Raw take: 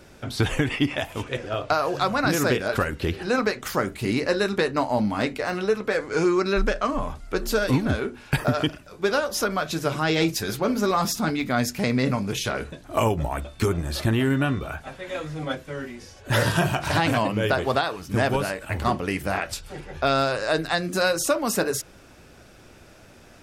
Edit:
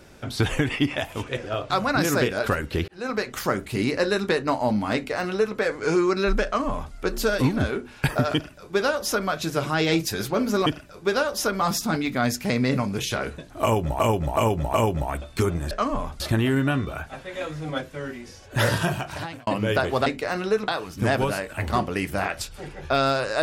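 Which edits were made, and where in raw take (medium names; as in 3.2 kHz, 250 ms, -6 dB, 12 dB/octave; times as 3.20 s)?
1.70–1.99 s: delete
3.17–3.58 s: fade in linear
5.23–5.85 s: copy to 17.80 s
6.74–7.23 s: copy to 13.94 s
8.63–9.58 s: copy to 10.95 s
12.96–13.33 s: loop, 4 plays
16.39–17.21 s: fade out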